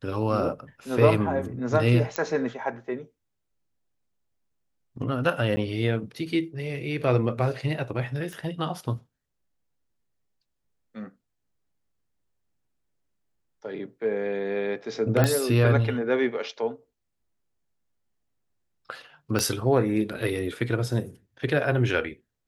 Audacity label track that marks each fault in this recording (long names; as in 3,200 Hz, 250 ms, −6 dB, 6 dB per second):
2.160000	2.160000	click −11 dBFS
5.560000	5.570000	drop-out 10 ms
8.330000	8.330000	click −24 dBFS
15.240000	15.240000	click −8 dBFS
19.390000	19.390000	click −11 dBFS